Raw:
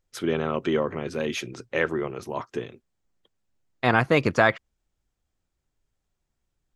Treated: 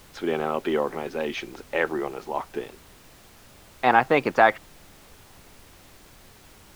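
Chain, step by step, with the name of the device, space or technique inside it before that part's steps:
horn gramophone (band-pass filter 240–4,000 Hz; parametric band 810 Hz +10 dB 0.29 octaves; tape wow and flutter; pink noise bed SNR 23 dB)

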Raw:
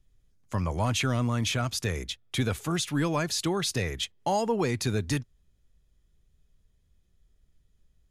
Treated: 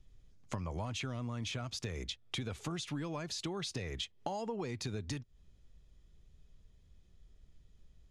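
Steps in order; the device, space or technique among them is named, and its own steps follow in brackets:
serial compression, leveller first (downward compressor 2 to 1, threshold −30 dBFS, peak gain reduction 5 dB; downward compressor 6 to 1, threshold −41 dBFS, peak gain reduction 14 dB)
low-pass filter 6,600 Hz 12 dB per octave
parametric band 1,600 Hz −3 dB 0.66 octaves
level +4.5 dB

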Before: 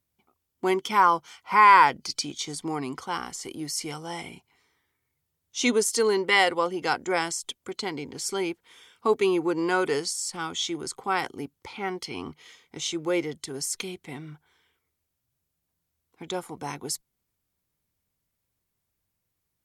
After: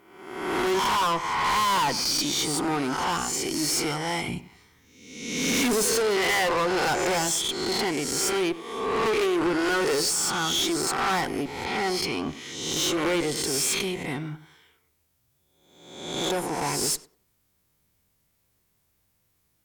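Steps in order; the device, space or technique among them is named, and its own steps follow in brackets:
peak hold with a rise ahead of every peak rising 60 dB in 0.90 s
0:04.28–0:05.86: bass and treble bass +11 dB, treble +1 dB
rockabilly slapback (tube saturation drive 30 dB, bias 0.3; tape delay 98 ms, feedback 26%, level −13 dB, low-pass 1,700 Hz)
level +8 dB

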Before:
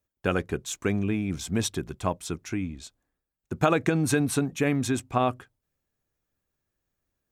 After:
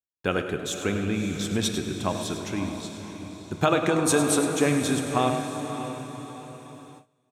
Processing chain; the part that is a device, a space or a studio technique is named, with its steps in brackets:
PA in a hall (high-pass filter 110 Hz 6 dB per octave; parametric band 3,500 Hz +6 dB 0.42 octaves; single-tap delay 102 ms −11 dB; convolution reverb RT60 4.0 s, pre-delay 8 ms, DRR 6.5 dB)
0:03.89–0:04.66: octave-band graphic EQ 125/500/1,000/2,000/8,000 Hz −6/+3/+8/−4/+7 dB
feedback delay with all-pass diffusion 583 ms, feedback 43%, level −10 dB
noise gate with hold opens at −36 dBFS

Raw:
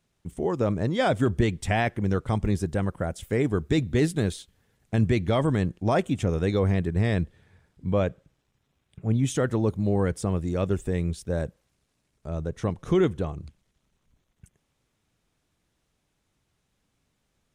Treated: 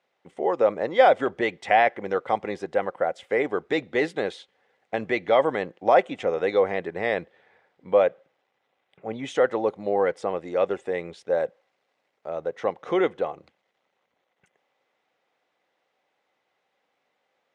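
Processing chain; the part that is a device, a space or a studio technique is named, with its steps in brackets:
tin-can telephone (band-pass filter 510–3,200 Hz; hollow resonant body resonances 530/760/2,000 Hz, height 8 dB, ringing for 25 ms)
level +4 dB

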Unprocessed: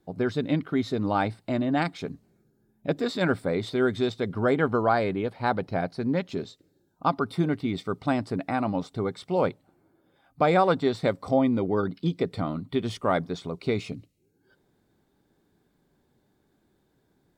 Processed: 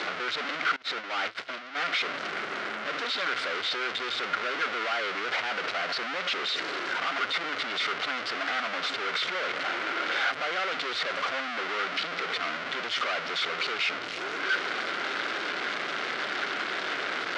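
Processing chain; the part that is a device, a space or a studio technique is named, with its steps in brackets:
home computer beeper (sign of each sample alone; loudspeaker in its box 640–4,700 Hz, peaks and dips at 880 Hz −7 dB, 1,400 Hz +9 dB, 2,100 Hz +6 dB, 3,000 Hz +3 dB)
0:00.76–0:02.03: noise gate −30 dBFS, range −24 dB

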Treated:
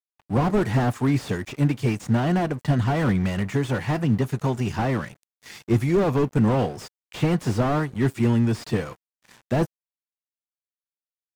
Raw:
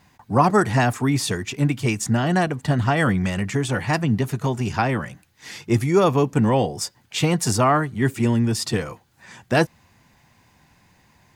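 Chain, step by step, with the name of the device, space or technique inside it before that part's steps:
early transistor amplifier (dead-zone distortion −42 dBFS; slew-rate limiting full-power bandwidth 58 Hz)

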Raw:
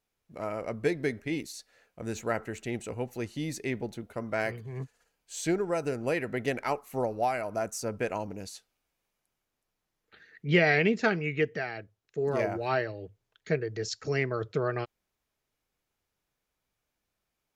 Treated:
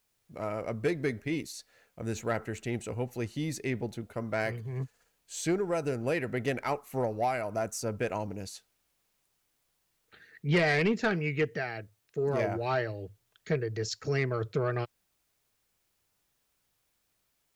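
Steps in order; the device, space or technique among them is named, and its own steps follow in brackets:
open-reel tape (soft clipping −19 dBFS, distortion −16 dB; parametric band 110 Hz +4 dB 0.98 octaves; white noise bed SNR 44 dB)

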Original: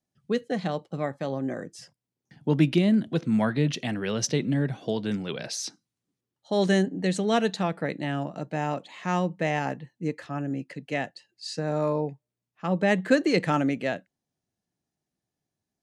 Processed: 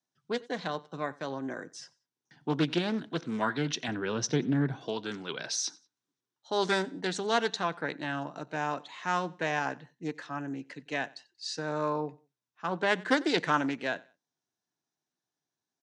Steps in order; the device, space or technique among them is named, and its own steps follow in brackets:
full-range speaker at full volume (highs frequency-modulated by the lows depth 0.39 ms; loudspeaker in its box 180–8,900 Hz, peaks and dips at 200 Hz −8 dB, 550 Hz −4 dB, 990 Hz +7 dB, 1,500 Hz +7 dB, 3,700 Hz +6 dB, 5,800 Hz +7 dB)
0:03.88–0:04.81: spectral tilt −2.5 dB per octave
repeating echo 92 ms, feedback 28%, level −23.5 dB
level −4 dB

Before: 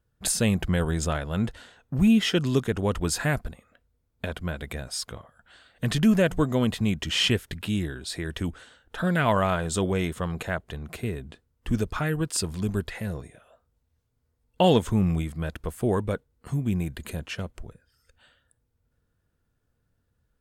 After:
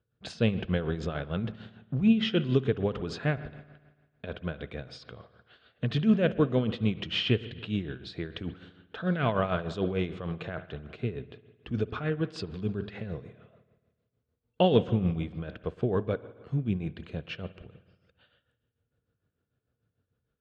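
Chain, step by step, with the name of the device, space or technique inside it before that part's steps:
combo amplifier with spring reverb and tremolo (spring reverb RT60 1.4 s, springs 54 ms, chirp 25 ms, DRR 12.5 dB; amplitude tremolo 6.7 Hz, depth 63%; loudspeaker in its box 90–4,000 Hz, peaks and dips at 120 Hz +4 dB, 440 Hz +4 dB, 930 Hz −6 dB, 1,900 Hz −5 dB)
level −1.5 dB

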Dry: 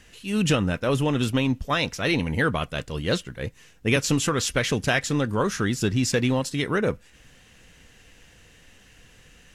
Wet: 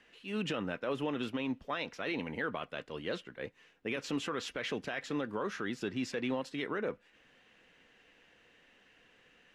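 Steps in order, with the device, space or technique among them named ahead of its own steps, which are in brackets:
DJ mixer with the lows and highs turned down (three-way crossover with the lows and the highs turned down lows −19 dB, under 220 Hz, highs −18 dB, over 3,800 Hz; brickwall limiter −18 dBFS, peak gain reduction 9.5 dB)
level −7 dB

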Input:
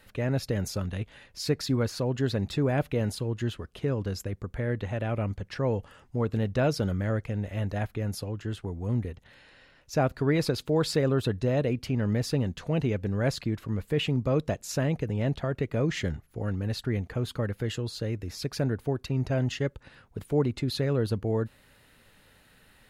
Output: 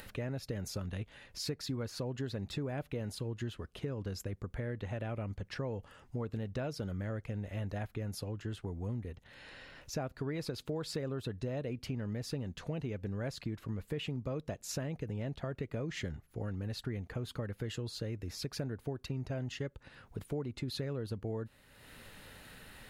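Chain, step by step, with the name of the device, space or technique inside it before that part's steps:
upward and downward compression (upward compression, threshold −38 dBFS; downward compressor, threshold −30 dBFS, peak gain reduction 10.5 dB)
level −4 dB

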